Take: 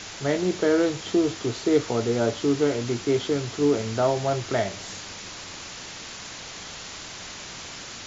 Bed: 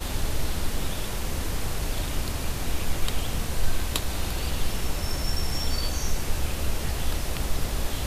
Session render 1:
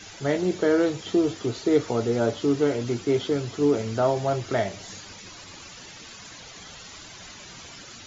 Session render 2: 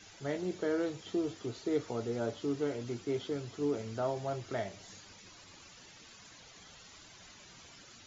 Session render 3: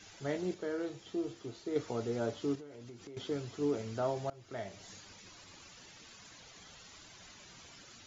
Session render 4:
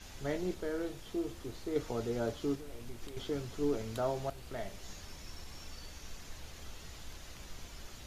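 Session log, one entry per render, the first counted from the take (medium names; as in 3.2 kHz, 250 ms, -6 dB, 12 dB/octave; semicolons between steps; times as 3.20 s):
noise reduction 11 dB, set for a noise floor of -39 dBFS
trim -11.5 dB
0.54–1.76 s: feedback comb 68 Hz, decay 0.35 s; 2.55–3.17 s: compression 10:1, threshold -46 dBFS; 4.30–4.86 s: fade in linear, from -23 dB
add bed -22 dB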